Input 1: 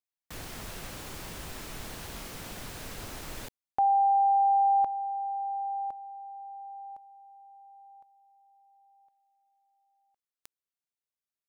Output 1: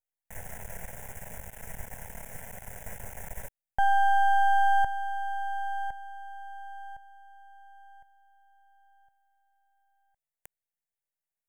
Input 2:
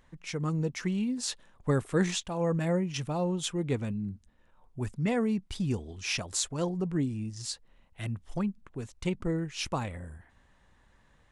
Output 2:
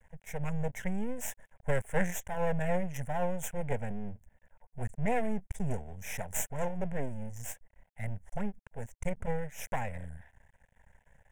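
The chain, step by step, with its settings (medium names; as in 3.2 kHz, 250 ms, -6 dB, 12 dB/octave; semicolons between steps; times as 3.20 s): high-order bell 3.5 kHz -14 dB 1.2 oct; half-wave rectifier; static phaser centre 1.2 kHz, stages 6; trim +5.5 dB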